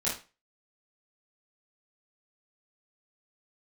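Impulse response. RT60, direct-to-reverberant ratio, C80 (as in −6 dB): 0.30 s, −9.0 dB, 13.5 dB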